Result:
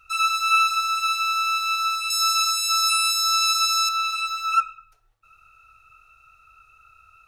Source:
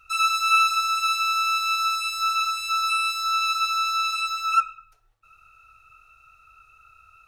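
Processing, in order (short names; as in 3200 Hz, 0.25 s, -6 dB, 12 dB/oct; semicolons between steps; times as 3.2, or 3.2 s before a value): 2.1–3.89 band shelf 7400 Hz +12.5 dB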